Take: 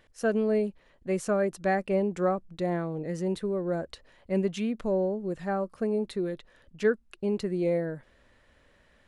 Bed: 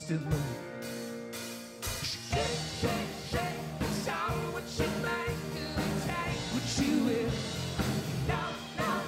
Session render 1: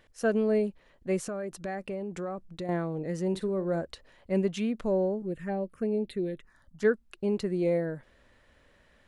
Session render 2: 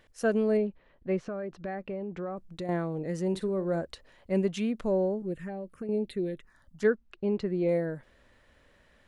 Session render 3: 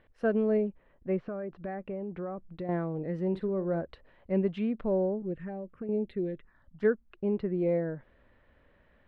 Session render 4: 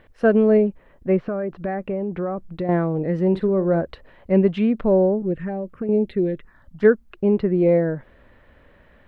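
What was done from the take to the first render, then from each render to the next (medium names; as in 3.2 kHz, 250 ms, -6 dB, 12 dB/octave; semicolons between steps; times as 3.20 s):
1.27–2.69 s: compression 5:1, threshold -32 dBFS; 3.29–3.81 s: doubling 47 ms -14 dB; 5.22–6.83 s: touch-sensitive phaser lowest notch 370 Hz, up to 1.3 kHz, full sweep at -26.5 dBFS
0.57–2.37 s: distance through air 240 m; 5.37–5.89 s: compression, threshold -33 dBFS; 6.87–7.69 s: distance through air 140 m
distance through air 430 m
trim +11 dB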